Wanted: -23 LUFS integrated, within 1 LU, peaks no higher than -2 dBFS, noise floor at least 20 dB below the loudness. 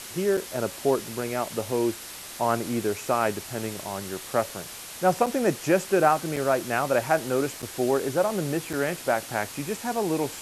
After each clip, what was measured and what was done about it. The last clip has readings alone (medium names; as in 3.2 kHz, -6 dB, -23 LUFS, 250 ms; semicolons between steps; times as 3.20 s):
dropouts 5; longest dropout 5.8 ms; noise floor -40 dBFS; noise floor target -47 dBFS; loudness -26.5 LUFS; peak level -6.5 dBFS; loudness target -23.0 LUFS
-> interpolate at 0.37/5.26/6.36/7.62/8.73 s, 5.8 ms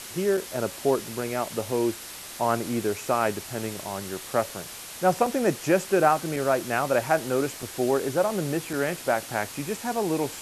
dropouts 0; noise floor -40 dBFS; noise floor target -47 dBFS
-> noise reduction 7 dB, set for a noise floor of -40 dBFS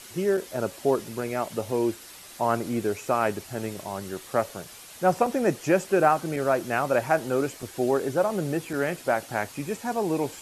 noise floor -46 dBFS; noise floor target -47 dBFS
-> noise reduction 6 dB, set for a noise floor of -46 dBFS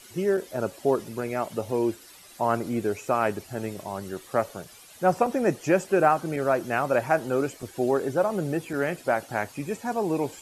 noise floor -50 dBFS; loudness -26.5 LUFS; peak level -6.5 dBFS; loudness target -23.0 LUFS
-> trim +3.5 dB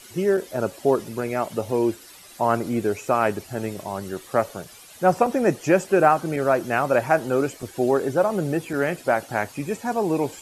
loudness -23.0 LUFS; peak level -3.0 dBFS; noise floor -46 dBFS